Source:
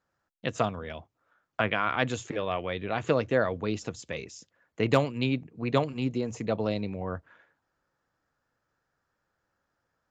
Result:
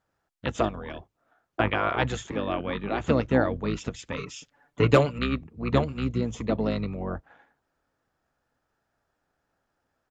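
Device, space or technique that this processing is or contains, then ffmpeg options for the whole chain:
octave pedal: -filter_complex "[0:a]asplit=2[a][b];[b]asetrate=22050,aresample=44100,atempo=2,volume=-2dB[c];[a][c]amix=inputs=2:normalize=0,asettb=1/sr,asplit=3[d][e][f];[d]atrim=end=4.174[g];[e]atrim=start=4.17:end=5.19,asetpts=PTS-STARTPTS,afade=t=in:d=0.004:c=qsin,afade=t=out:st=1.016:d=0.004:c=qsin,aecho=1:1:6.9:0.97,atrim=end_sample=44982[h];[f]atrim=start=5.186[i];[g][h]acrossfade=d=0.004:c1=hsin:c2=qsin[j];[j][i]acrossfade=d=0.004:c1=qsin:c2=hsin"

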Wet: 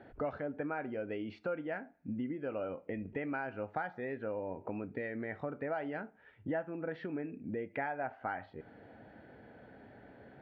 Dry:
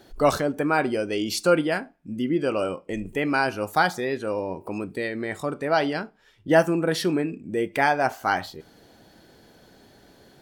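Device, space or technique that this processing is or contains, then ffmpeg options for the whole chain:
bass amplifier: -af "acompressor=threshold=-35dB:ratio=5,highpass=76,equalizer=f=170:t=q:w=4:g=-6,equalizer=f=360:t=q:w=4:g=-7,equalizer=f=1.1k:t=q:w=4:g=-9,lowpass=f=2.1k:w=0.5412,lowpass=f=2.1k:w=1.3066,volume=1dB"

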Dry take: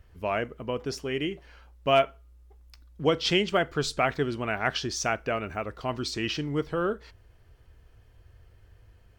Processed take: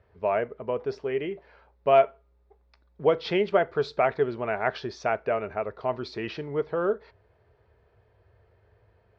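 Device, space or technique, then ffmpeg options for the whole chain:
guitar cabinet: -af "highpass=96,equalizer=f=150:t=q:w=4:g=-3,equalizer=f=290:t=q:w=4:g=-7,equalizer=f=420:t=q:w=4:g=8,equalizer=f=620:t=q:w=4:g=7,equalizer=f=900:t=q:w=4:g=5,equalizer=f=3k:t=q:w=4:g=-9,lowpass=f=3.9k:w=0.5412,lowpass=f=3.9k:w=1.3066,volume=-2dB"

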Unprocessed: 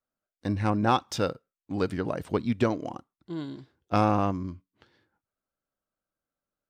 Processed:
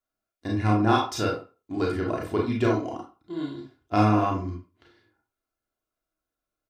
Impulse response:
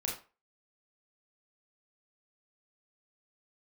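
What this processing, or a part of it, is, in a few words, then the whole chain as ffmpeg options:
microphone above a desk: -filter_complex "[0:a]aecho=1:1:2.9:0.54[a];[1:a]atrim=start_sample=2205[b];[a][b]afir=irnorm=-1:irlink=0,volume=-1dB"

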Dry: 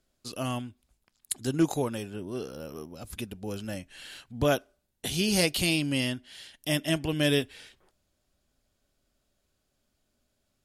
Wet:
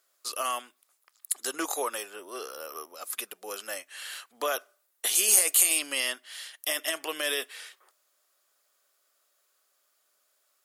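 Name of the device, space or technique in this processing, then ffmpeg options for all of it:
laptop speaker: -filter_complex "[0:a]highpass=f=440:w=0.5412,highpass=f=440:w=1.3066,equalizer=f=1.2k:t=o:w=0.43:g=11,equalizer=f=1.9k:t=o:w=0.47:g=5,alimiter=limit=-20dB:level=0:latency=1:release=41,aemphasis=mode=production:type=50kf,asettb=1/sr,asplit=3[a][b][c];[a]atrim=end=5.154[d];[b]atrim=start=5.15:end=5.79,asetpts=PTS-STARTPTS,afade=t=in:d=0.004:c=qsin,afade=t=out:st=0.636:d=0.004:c=qsin,highshelf=f=6.1k:t=q:w=3:g=6[e];[c]atrim=start=5.786[f];[d][e]acrossfade=d=0.004:c1=hsin:c2=qsin[g];[g][f]acrossfade=d=0.004:c1=qsin:c2=hsin"

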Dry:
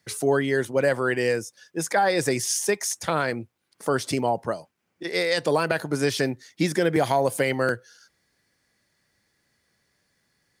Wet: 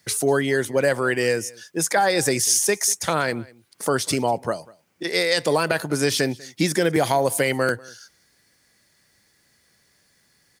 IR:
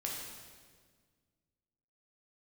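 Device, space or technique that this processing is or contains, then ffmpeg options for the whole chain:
parallel compression: -filter_complex "[0:a]highshelf=f=4k:g=7,asplit=2[a][b];[b]acompressor=threshold=-32dB:ratio=6,volume=-1.5dB[c];[a][c]amix=inputs=2:normalize=0,aecho=1:1:194:0.0668"

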